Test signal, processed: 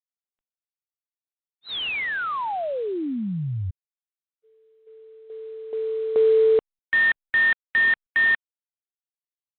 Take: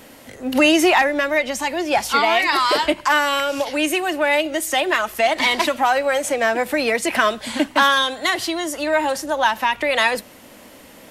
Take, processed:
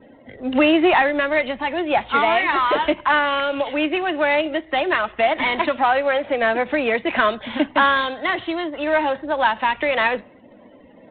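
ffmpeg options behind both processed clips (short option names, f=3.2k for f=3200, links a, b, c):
-filter_complex "[0:a]acrossover=split=2500[a][b];[b]acompressor=threshold=-29dB:ratio=4:attack=1:release=60[c];[a][c]amix=inputs=2:normalize=0,afftdn=nr=34:nf=-43" -ar 8000 -c:a adpcm_ima_wav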